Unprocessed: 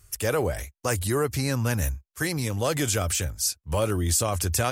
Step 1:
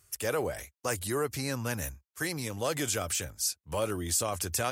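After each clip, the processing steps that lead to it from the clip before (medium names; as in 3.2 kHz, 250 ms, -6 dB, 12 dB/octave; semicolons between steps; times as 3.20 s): high-pass 210 Hz 6 dB/octave; trim -4.5 dB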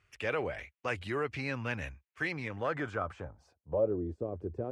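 low-pass sweep 2.5 kHz -> 410 Hz, 2.29–4.09 s; trim -3.5 dB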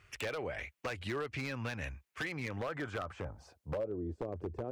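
compression 8:1, threshold -42 dBFS, peak gain reduction 17.5 dB; wavefolder -37.5 dBFS; trim +8 dB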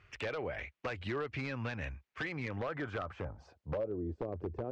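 distance through air 140 m; trim +1 dB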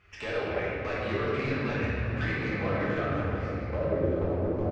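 delay 1145 ms -14.5 dB; reverberation RT60 3.3 s, pre-delay 5 ms, DRR -9 dB; trim -1.5 dB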